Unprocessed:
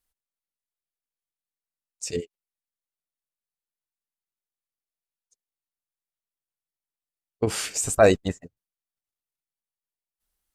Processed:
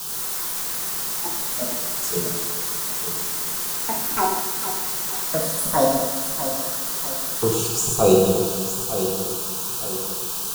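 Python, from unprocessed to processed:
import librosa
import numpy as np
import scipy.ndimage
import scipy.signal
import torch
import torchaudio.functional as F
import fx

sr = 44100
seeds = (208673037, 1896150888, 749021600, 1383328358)

y = fx.env_flanger(x, sr, rest_ms=11.0, full_db=-24.0)
y = fx.quant_dither(y, sr, seeds[0], bits=6, dither='triangular')
y = fx.fixed_phaser(y, sr, hz=400.0, stages=8)
y = fx.echo_feedback(y, sr, ms=909, feedback_pct=41, wet_db=-10.0)
y = fx.rev_plate(y, sr, seeds[1], rt60_s=1.7, hf_ratio=0.8, predelay_ms=0, drr_db=-2.5)
y = fx.echo_pitch(y, sr, ms=87, semitones=6, count=2, db_per_echo=-3.0)
y = y * librosa.db_to_amplitude(4.5)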